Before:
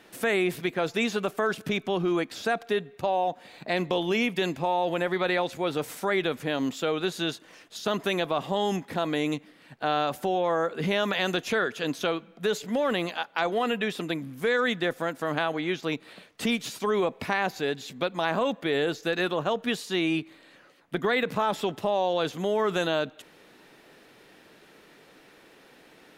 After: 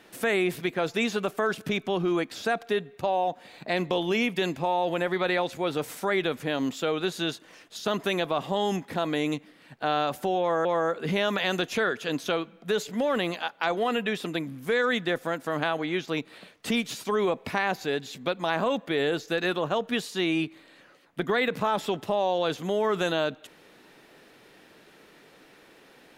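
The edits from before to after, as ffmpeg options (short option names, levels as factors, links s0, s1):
-filter_complex "[0:a]asplit=2[s0][s1];[s0]atrim=end=10.652[s2];[s1]atrim=start=10.398[s3];[s2][s3]acrossfade=d=0.004:c1=hsin:c2=hsin"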